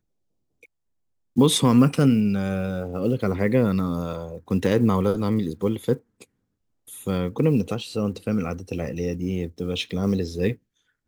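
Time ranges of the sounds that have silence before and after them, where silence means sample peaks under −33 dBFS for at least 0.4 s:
0:01.37–0:06.22
0:06.91–0:10.54

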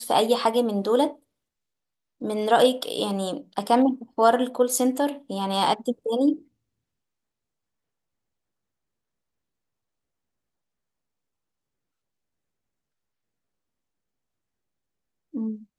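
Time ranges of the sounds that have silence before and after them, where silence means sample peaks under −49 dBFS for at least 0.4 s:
0:02.21–0:06.43

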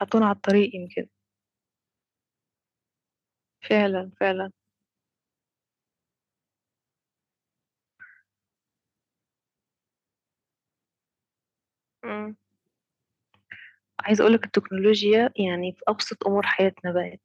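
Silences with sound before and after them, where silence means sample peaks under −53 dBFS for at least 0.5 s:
0:01.06–0:03.62
0:04.50–0:08.00
0:08.19–0:12.03
0:12.34–0:13.34

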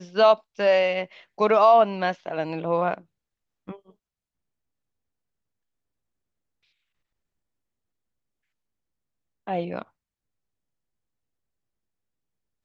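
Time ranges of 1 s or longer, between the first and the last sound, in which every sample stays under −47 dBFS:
0:03.90–0:09.47

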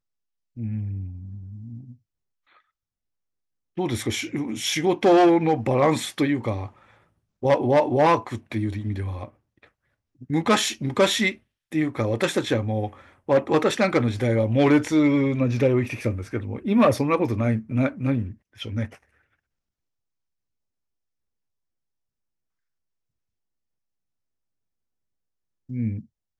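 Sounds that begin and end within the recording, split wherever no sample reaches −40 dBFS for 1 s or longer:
0:03.77–0:18.96

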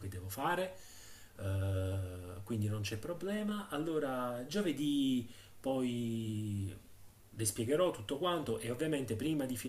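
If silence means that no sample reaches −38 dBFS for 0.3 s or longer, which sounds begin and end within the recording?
0:01.39–0:05.22
0:05.64–0:06.73

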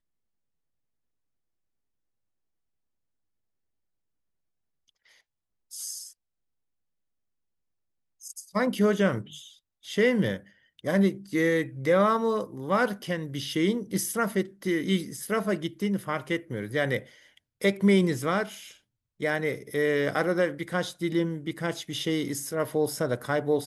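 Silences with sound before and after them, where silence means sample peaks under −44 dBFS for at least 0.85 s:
0:06.11–0:08.22

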